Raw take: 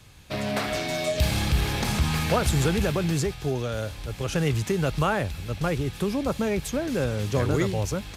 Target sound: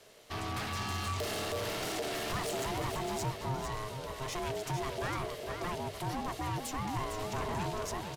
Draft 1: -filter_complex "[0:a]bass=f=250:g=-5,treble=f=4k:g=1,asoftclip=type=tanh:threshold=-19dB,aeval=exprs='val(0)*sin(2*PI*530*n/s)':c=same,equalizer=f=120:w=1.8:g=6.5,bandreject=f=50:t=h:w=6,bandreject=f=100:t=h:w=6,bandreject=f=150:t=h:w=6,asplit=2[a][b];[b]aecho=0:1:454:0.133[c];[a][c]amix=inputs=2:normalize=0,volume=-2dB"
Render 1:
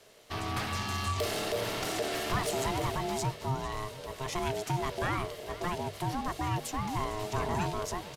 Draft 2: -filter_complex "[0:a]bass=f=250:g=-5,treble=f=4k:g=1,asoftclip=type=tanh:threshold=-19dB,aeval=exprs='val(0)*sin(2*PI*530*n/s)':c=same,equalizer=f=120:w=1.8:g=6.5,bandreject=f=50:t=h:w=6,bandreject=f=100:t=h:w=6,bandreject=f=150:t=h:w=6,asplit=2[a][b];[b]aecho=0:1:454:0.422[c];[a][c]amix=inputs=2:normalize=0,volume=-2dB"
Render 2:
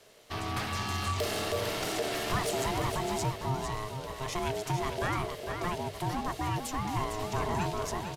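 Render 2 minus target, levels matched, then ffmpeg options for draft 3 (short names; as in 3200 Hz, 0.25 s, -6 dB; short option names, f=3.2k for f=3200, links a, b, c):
soft clip: distortion -9 dB
-filter_complex "[0:a]bass=f=250:g=-5,treble=f=4k:g=1,asoftclip=type=tanh:threshold=-28dB,aeval=exprs='val(0)*sin(2*PI*530*n/s)':c=same,equalizer=f=120:w=1.8:g=6.5,bandreject=f=50:t=h:w=6,bandreject=f=100:t=h:w=6,bandreject=f=150:t=h:w=6,asplit=2[a][b];[b]aecho=0:1:454:0.422[c];[a][c]amix=inputs=2:normalize=0,volume=-2dB"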